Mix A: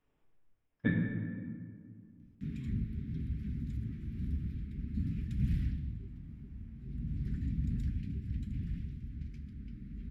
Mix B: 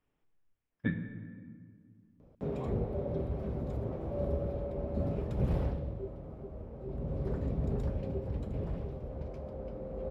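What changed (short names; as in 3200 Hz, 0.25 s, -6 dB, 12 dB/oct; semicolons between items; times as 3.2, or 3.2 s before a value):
speech: send -7.5 dB; background: remove Chebyshev band-stop 250–1800 Hz, order 3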